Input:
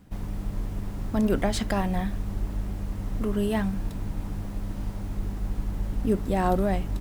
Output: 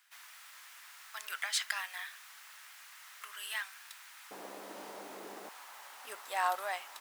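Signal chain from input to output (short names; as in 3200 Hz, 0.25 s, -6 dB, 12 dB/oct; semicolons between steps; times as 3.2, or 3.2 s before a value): HPF 1400 Hz 24 dB/oct, from 4.31 s 400 Hz, from 5.49 s 900 Hz; gain +1 dB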